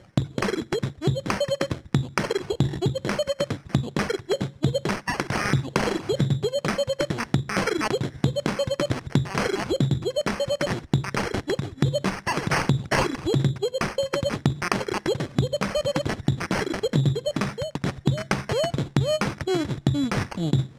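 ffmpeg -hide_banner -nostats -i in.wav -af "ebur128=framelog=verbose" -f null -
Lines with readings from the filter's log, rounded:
Integrated loudness:
  I:         -25.7 LUFS
  Threshold: -35.7 LUFS
Loudness range:
  LRA:         1.4 LU
  Threshold: -45.7 LUFS
  LRA low:   -26.4 LUFS
  LRA high:  -25.0 LUFS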